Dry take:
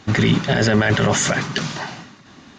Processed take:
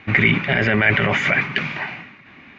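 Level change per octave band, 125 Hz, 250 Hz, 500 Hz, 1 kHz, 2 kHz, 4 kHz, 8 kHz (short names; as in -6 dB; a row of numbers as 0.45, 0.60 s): -3.5 dB, -3.5 dB, -3.0 dB, -1.5 dB, +5.5 dB, -3.0 dB, under -20 dB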